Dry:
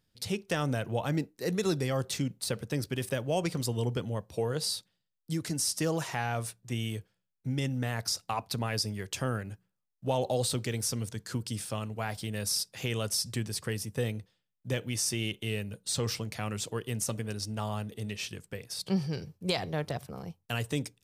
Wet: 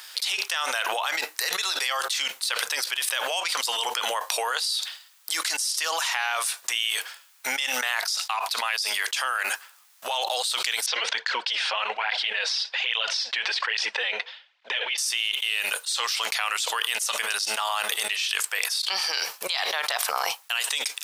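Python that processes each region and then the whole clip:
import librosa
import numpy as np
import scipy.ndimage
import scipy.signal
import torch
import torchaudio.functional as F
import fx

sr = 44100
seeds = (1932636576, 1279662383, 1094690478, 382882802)

y = fx.chain(x, sr, fx.cabinet(low_hz=160.0, low_slope=12, high_hz=3700.0, hz=(290.0, 500.0, 1200.0), db=(-5, 4, -7)),
    fx.flanger_cancel(hz=1.2, depth_ms=6.4), at=(10.86, 14.98))
y = scipy.signal.sosfilt(scipy.signal.butter(4, 920.0, 'highpass', fs=sr, output='sos'), y)
y = fx.dynamic_eq(y, sr, hz=3500.0, q=1.3, threshold_db=-50.0, ratio=4.0, max_db=7)
y = fx.env_flatten(y, sr, amount_pct=100)
y = F.gain(torch.from_numpy(y), -2.0).numpy()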